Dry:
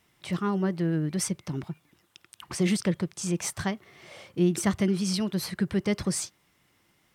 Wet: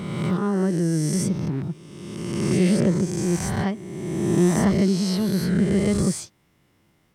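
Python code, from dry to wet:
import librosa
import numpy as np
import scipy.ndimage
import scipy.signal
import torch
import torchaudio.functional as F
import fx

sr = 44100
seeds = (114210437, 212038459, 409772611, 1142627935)

y = fx.spec_swells(x, sr, rise_s=1.78)
y = fx.tilt_shelf(y, sr, db=5.0, hz=730.0)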